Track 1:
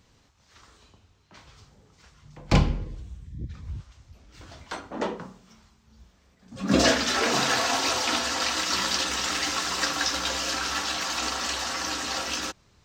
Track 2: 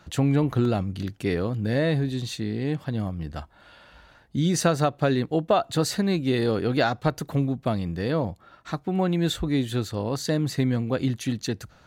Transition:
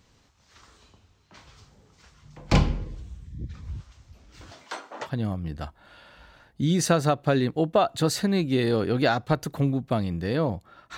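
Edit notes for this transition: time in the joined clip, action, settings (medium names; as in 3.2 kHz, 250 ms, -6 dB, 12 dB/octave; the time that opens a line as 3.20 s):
track 1
4.51–5.09 s: high-pass 200 Hz -> 810 Hz
5.05 s: go over to track 2 from 2.80 s, crossfade 0.08 s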